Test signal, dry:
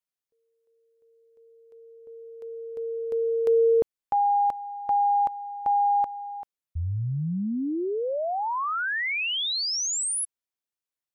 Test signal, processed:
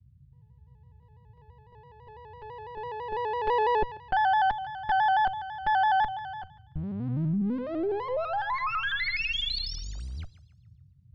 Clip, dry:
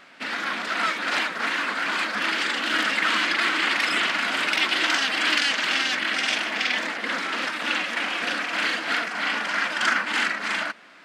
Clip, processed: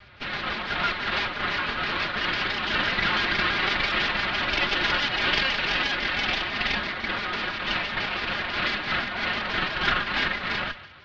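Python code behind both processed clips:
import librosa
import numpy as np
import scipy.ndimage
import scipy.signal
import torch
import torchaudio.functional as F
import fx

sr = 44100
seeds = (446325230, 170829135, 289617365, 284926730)

p1 = fx.lower_of_two(x, sr, delay_ms=5.2)
p2 = scipy.signal.sosfilt(scipy.signal.butter(6, 4500.0, 'lowpass', fs=sr, output='sos'), p1)
p3 = fx.peak_eq(p2, sr, hz=79.0, db=3.5, octaves=2.2)
p4 = fx.notch(p3, sr, hz=500.0, q=14.0)
p5 = p4 + fx.echo_thinned(p4, sr, ms=143, feedback_pct=44, hz=640.0, wet_db=-15.0, dry=0)
p6 = fx.dmg_noise_band(p5, sr, seeds[0], low_hz=56.0, high_hz=140.0, level_db=-55.0)
y = fx.vibrato_shape(p6, sr, shape='square', rate_hz=6.0, depth_cents=100.0)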